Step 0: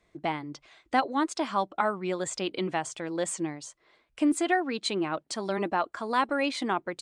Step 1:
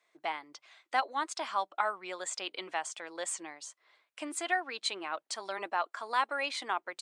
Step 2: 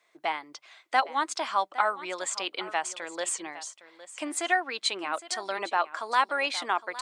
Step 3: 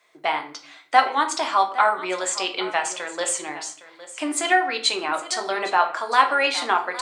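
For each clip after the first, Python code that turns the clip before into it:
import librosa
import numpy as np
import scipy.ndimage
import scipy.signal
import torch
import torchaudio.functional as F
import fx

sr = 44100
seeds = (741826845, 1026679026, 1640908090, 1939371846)

y1 = scipy.signal.sosfilt(scipy.signal.butter(2, 750.0, 'highpass', fs=sr, output='sos'), x)
y1 = y1 * 10.0 ** (-2.0 / 20.0)
y2 = y1 + 10.0 ** (-16.0 / 20.0) * np.pad(y1, (int(811 * sr / 1000.0), 0))[:len(y1)]
y2 = y2 * 10.0 ** (5.5 / 20.0)
y3 = fx.room_shoebox(y2, sr, seeds[0], volume_m3=46.0, walls='mixed', distance_m=0.41)
y3 = y3 * 10.0 ** (5.5 / 20.0)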